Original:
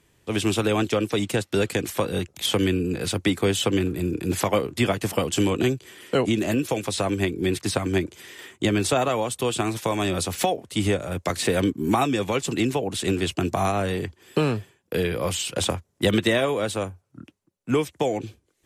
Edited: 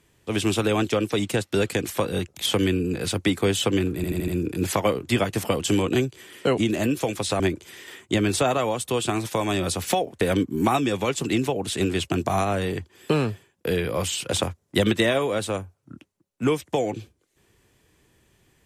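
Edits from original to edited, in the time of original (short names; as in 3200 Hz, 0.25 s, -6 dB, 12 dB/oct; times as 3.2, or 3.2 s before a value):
3.96 stutter 0.08 s, 5 plays
7.08–7.91 cut
10.72–11.48 cut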